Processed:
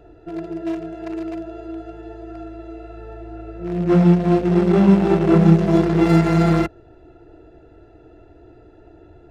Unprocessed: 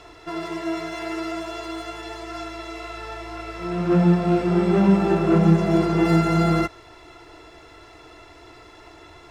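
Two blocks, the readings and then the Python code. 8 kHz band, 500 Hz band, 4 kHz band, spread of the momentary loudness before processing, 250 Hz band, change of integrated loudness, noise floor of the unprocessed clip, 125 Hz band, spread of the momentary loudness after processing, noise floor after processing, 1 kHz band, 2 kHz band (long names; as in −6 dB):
can't be measured, +3.0 dB, −2.5 dB, 17 LU, +3.5 dB, +4.0 dB, −47 dBFS, +4.0 dB, 22 LU, −48 dBFS, 0.0 dB, −1.0 dB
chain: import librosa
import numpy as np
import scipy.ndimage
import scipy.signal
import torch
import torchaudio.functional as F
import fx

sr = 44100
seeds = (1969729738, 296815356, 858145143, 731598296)

y = fx.wiener(x, sr, points=41)
y = y * 10.0 ** (4.0 / 20.0)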